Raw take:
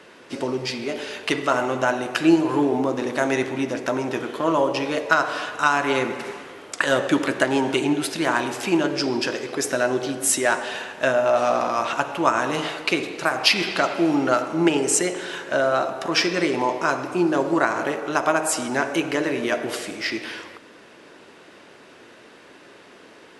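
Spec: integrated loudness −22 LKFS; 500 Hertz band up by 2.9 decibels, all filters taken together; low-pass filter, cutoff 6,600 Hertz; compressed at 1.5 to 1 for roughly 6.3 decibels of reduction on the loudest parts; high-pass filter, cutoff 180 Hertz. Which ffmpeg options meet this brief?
ffmpeg -i in.wav -af "highpass=180,lowpass=6600,equalizer=frequency=500:width_type=o:gain=4,acompressor=threshold=-29dB:ratio=1.5,volume=4dB" out.wav

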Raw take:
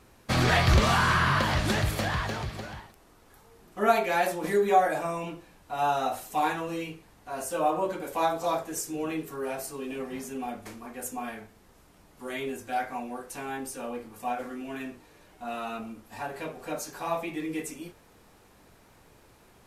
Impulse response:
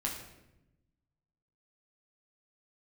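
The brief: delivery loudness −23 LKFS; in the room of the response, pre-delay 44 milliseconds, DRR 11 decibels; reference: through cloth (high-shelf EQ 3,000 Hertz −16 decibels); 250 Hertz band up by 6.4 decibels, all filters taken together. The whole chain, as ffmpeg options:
-filter_complex "[0:a]equalizer=frequency=250:width_type=o:gain=8.5,asplit=2[link_01][link_02];[1:a]atrim=start_sample=2205,adelay=44[link_03];[link_02][link_03]afir=irnorm=-1:irlink=0,volume=-14dB[link_04];[link_01][link_04]amix=inputs=2:normalize=0,highshelf=frequency=3000:gain=-16,volume=5dB"

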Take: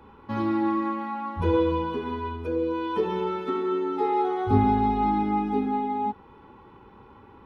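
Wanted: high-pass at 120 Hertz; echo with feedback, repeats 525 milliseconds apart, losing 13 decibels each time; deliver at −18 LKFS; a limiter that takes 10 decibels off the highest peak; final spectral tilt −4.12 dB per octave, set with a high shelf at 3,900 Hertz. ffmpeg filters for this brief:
ffmpeg -i in.wav -af "highpass=120,highshelf=frequency=3900:gain=-8.5,alimiter=limit=-19.5dB:level=0:latency=1,aecho=1:1:525|1050|1575:0.224|0.0493|0.0108,volume=10.5dB" out.wav

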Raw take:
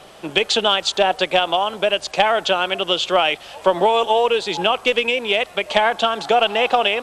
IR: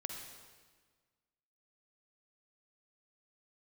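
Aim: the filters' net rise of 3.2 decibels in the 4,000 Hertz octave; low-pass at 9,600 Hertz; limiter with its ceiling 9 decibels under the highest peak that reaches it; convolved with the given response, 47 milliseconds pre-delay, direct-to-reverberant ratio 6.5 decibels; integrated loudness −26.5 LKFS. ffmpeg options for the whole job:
-filter_complex "[0:a]lowpass=9600,equalizer=frequency=4000:width_type=o:gain=4.5,alimiter=limit=-8.5dB:level=0:latency=1,asplit=2[link_01][link_02];[1:a]atrim=start_sample=2205,adelay=47[link_03];[link_02][link_03]afir=irnorm=-1:irlink=0,volume=-5.5dB[link_04];[link_01][link_04]amix=inputs=2:normalize=0,volume=-8dB"

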